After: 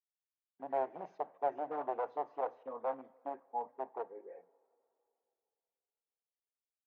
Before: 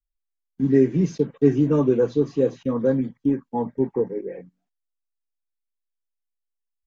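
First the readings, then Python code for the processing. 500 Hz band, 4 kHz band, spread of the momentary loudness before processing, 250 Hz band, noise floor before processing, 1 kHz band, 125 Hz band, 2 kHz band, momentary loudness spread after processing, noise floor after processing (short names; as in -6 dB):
-17.5 dB, n/a, 10 LU, -32.0 dB, -82 dBFS, 0.0 dB, under -40 dB, -12.0 dB, 9 LU, under -85 dBFS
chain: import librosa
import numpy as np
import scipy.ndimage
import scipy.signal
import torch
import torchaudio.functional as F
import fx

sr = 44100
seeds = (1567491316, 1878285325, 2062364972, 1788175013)

y = np.minimum(x, 2.0 * 10.0 ** (-17.5 / 20.0) - x)
y = fx.ladder_bandpass(y, sr, hz=840.0, resonance_pct=50)
y = fx.rev_double_slope(y, sr, seeds[0], early_s=0.29, late_s=2.9, knee_db=-18, drr_db=15.5)
y = y * librosa.db_to_amplitude(-2.0)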